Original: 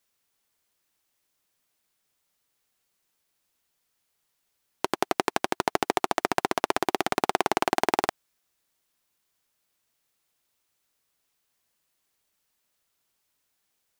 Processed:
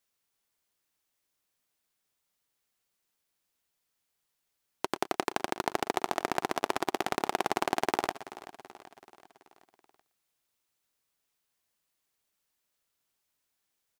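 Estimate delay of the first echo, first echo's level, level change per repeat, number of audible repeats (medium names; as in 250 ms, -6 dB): 117 ms, -17.5 dB, no regular repeats, 6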